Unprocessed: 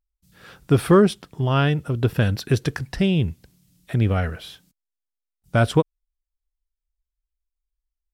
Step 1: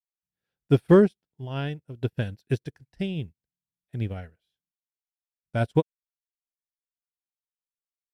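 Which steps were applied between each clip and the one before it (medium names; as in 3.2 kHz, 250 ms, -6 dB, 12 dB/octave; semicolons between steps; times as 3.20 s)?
peaking EQ 1.2 kHz -11 dB 0.34 oct; upward expansion 2.5:1, over -38 dBFS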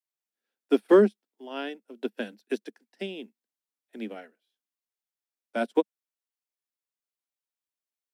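steep high-pass 210 Hz 96 dB/octave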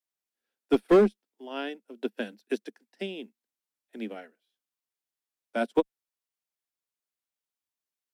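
one-sided clip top -15.5 dBFS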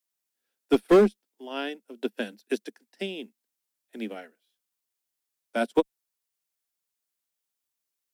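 treble shelf 4.6 kHz +7 dB; trim +1.5 dB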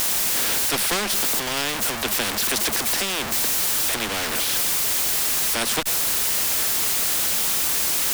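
jump at every zero crossing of -32.5 dBFS; spectrum-flattening compressor 4:1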